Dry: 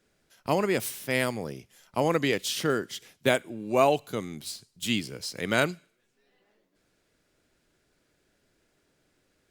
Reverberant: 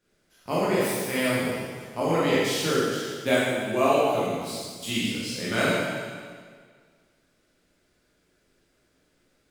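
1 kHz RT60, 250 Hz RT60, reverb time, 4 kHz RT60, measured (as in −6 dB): 1.7 s, 1.8 s, 1.8 s, 1.7 s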